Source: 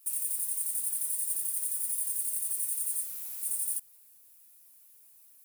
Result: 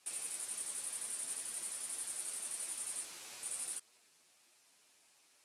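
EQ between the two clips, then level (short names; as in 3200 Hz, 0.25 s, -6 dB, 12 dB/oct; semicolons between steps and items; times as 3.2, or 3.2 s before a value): HPF 330 Hz 6 dB/oct; Bessel low-pass 4800 Hz, order 4; +8.5 dB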